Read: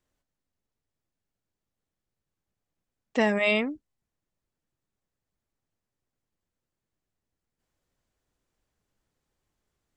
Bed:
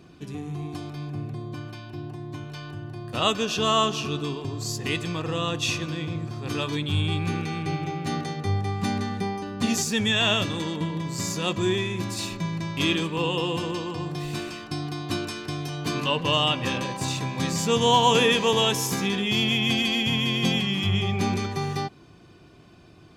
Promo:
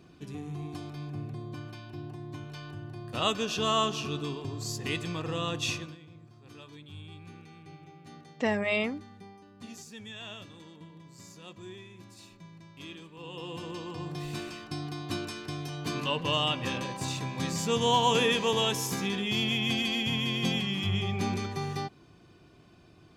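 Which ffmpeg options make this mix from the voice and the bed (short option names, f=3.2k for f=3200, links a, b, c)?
-filter_complex "[0:a]adelay=5250,volume=-4.5dB[a];[1:a]volume=10.5dB,afade=t=out:st=5.69:d=0.29:silence=0.158489,afade=t=in:st=13.17:d=0.99:silence=0.16788[b];[a][b]amix=inputs=2:normalize=0"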